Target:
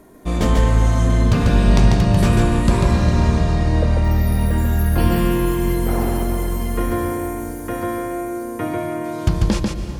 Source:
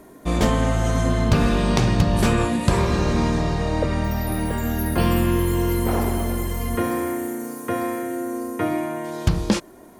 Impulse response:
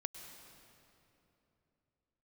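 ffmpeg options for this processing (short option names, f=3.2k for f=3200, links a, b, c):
-filter_complex "[0:a]lowshelf=f=130:g=5.5,asplit=2[a][b];[1:a]atrim=start_sample=2205,lowshelf=f=65:g=8,adelay=143[c];[b][c]afir=irnorm=-1:irlink=0,volume=-0.5dB[d];[a][d]amix=inputs=2:normalize=0,volume=-2dB"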